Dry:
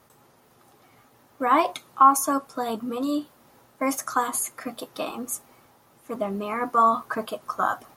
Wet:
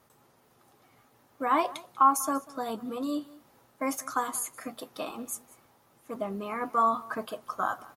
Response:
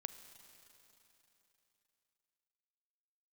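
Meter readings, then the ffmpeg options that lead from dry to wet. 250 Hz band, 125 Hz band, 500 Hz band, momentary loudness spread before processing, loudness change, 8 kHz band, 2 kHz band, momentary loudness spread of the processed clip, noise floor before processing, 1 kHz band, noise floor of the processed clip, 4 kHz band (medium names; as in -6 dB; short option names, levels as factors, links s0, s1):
-5.5 dB, no reading, -5.5 dB, 15 LU, -5.5 dB, -5.5 dB, -5.5 dB, 15 LU, -59 dBFS, -5.5 dB, -64 dBFS, -5.5 dB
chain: -af "aecho=1:1:193:0.0891,volume=0.531"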